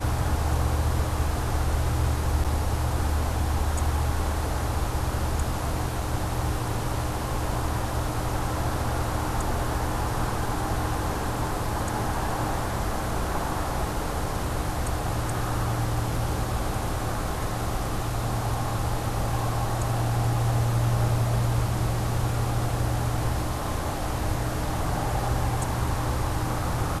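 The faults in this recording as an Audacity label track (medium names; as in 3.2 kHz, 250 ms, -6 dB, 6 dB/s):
2.440000	2.450000	dropout 6.8 ms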